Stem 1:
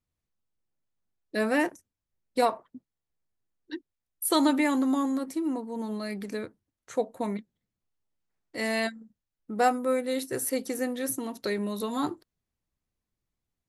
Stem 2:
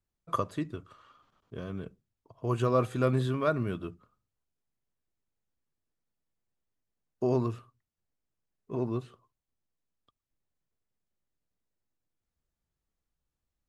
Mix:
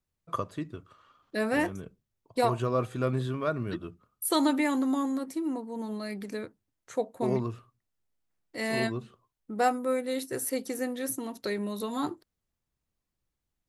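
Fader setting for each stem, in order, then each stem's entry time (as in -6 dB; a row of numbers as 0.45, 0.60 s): -2.0, -2.0 dB; 0.00, 0.00 s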